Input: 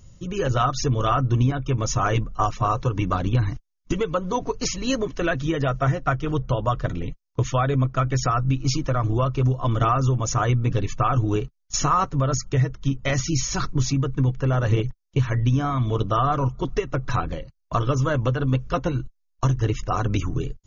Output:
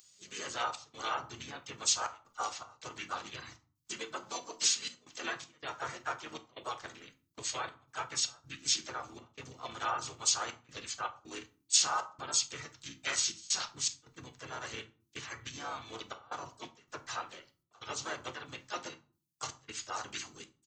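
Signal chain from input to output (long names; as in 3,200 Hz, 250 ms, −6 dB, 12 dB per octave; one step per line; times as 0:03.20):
pitch-shifted copies added −12 semitones −15 dB, −7 semitones −3 dB, +3 semitones −8 dB
low-shelf EQ 86 Hz −10 dB
gate pattern "xxxx.xxxxxx.xx." 80 BPM −24 dB
on a send at −7.5 dB: convolution reverb RT60 0.40 s, pre-delay 3 ms
on the sum: pitch-shifted copies added −5 semitones −5 dB
first difference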